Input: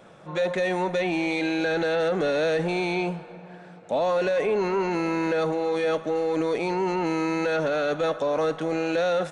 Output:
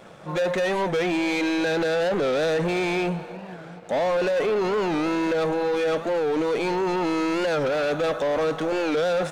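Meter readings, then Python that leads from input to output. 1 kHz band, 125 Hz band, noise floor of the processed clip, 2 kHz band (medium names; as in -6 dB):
+1.0 dB, +1.0 dB, -40 dBFS, +1.0 dB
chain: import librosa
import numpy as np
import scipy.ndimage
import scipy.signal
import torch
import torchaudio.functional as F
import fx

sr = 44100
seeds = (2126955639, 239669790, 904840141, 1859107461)

y = fx.leveller(x, sr, passes=2)
y = fx.record_warp(y, sr, rpm=45.0, depth_cents=160.0)
y = y * 10.0 ** (-2.0 / 20.0)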